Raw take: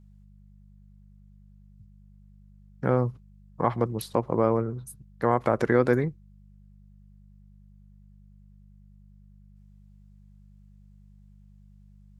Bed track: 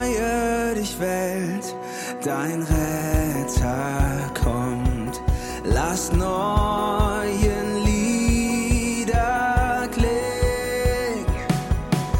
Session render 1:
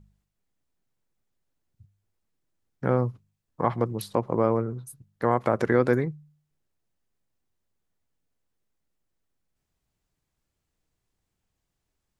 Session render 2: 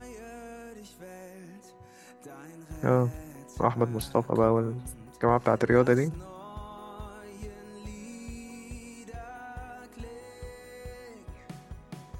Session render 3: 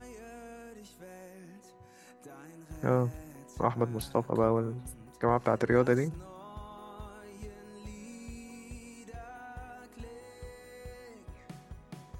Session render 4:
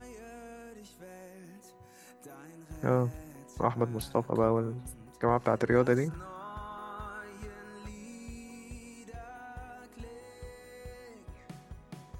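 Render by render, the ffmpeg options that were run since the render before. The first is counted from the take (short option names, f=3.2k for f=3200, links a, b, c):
-af "bandreject=f=50:t=h:w=4,bandreject=f=100:t=h:w=4,bandreject=f=150:t=h:w=4,bandreject=f=200:t=h:w=4"
-filter_complex "[1:a]volume=-22dB[a];[0:a][a]amix=inputs=2:normalize=0"
-af "volume=-3.5dB"
-filter_complex "[0:a]asettb=1/sr,asplit=3[a][b][c];[a]atrim=end=1.444[d];[b]atrim=start=1.44:end=2.35,asetpts=PTS-STARTPTS,afade=t=in:d=0.004:c=qsin,afade=t=out:st=0.906:d=0.004:c=qsin,highshelf=f=11k:g=11.5[e];[c]atrim=start=2.346[f];[d][e]acrossfade=d=0.004:c1=hsin:c2=qsin[g];[g][f]acrossfade=d=0.004:c1=qsin:c2=hsin,asettb=1/sr,asplit=3[h][i][j];[h]atrim=end=6.084[k];[i]atrim=start=6.08:end=7.89,asetpts=PTS-STARTPTS,afade=t=in:d=0.004:c=qsin,afade=t=out:st=1.806:d=0.004:c=qsin,equalizer=f=1.4k:t=o:w=0.74:g=14[l];[j]atrim=start=7.886[m];[k][l]acrossfade=d=0.004:c1=hsin:c2=qsin[n];[n][m]acrossfade=d=0.004:c1=qsin:c2=hsin"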